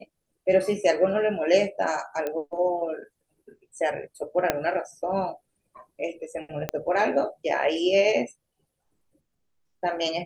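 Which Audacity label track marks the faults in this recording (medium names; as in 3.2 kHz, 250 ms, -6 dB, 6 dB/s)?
2.270000	2.270000	pop -17 dBFS
4.500000	4.500000	pop -7 dBFS
6.690000	6.690000	pop -12 dBFS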